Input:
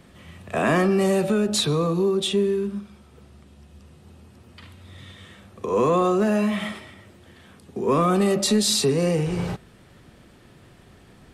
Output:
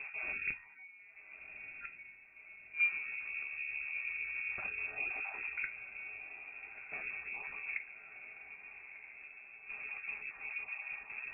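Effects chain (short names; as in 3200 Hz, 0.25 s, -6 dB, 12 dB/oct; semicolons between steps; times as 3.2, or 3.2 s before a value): random spectral dropouts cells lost 23%; bell 130 Hz +9 dB 0.56 oct; notches 50/100/150/200 Hz; compressor 10:1, threshold -27 dBFS, peak gain reduction 12.5 dB; resonator 360 Hz, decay 0.19 s, harmonics all, mix 70%; flipped gate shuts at -36 dBFS, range -34 dB; air absorption 340 m; diffused feedback echo 1.286 s, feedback 58%, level -10 dB; reverb RT60 0.25 s, pre-delay 5 ms, DRR 6.5 dB; modulation noise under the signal 28 dB; inverted band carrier 2600 Hz; gain +12 dB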